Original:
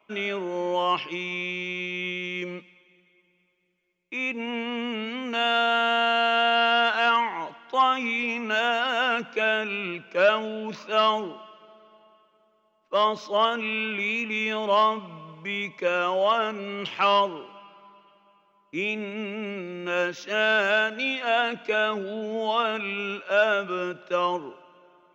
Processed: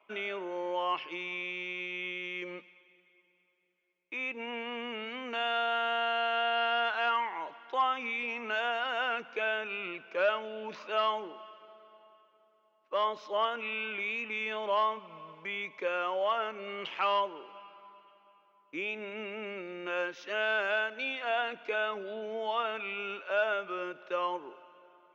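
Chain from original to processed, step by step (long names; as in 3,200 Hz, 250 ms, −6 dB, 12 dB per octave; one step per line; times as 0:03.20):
bass and treble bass −15 dB, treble −9 dB
in parallel at +2 dB: downward compressor, threshold −36 dBFS, peak gain reduction 19.5 dB
on the sum: level −9 dB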